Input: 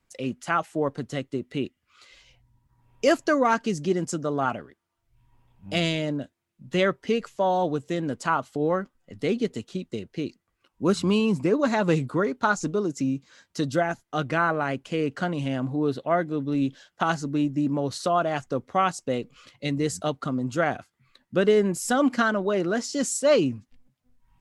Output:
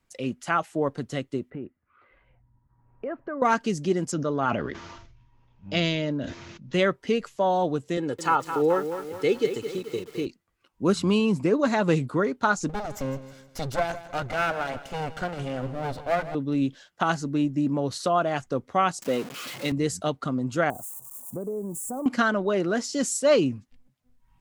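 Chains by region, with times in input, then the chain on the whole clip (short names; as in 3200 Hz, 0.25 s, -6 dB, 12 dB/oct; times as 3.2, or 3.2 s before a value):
1.5–3.42 LPF 1700 Hz 24 dB/oct + compressor 3:1, threshold -33 dBFS
4.12–6.74 steep low-pass 6700 Hz 72 dB/oct + notch 740 Hz, Q 10 + sustainer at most 45 dB/s
7.97–10.27 HPF 140 Hz + comb 2.3 ms, depth 66% + lo-fi delay 0.214 s, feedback 55%, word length 7-bit, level -9 dB
12.69–16.35 minimum comb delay 1.4 ms + feedback echo 0.157 s, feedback 41%, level -14.5 dB
19.02–19.72 zero-crossing step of -32 dBFS + HPF 180 Hz + mismatched tape noise reduction decoder only
20.7–22.06 switching spikes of -28 dBFS + Chebyshev band-stop 950–7800 Hz, order 3 + compressor 3:1, threshold -32 dBFS
whole clip: dry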